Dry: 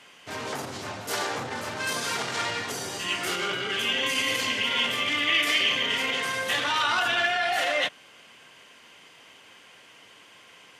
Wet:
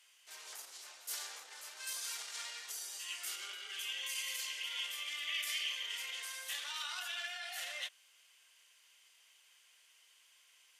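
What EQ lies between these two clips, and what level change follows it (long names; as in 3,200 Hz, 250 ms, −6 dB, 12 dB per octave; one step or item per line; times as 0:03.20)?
high-pass filter 340 Hz 24 dB per octave
first difference
−6.5 dB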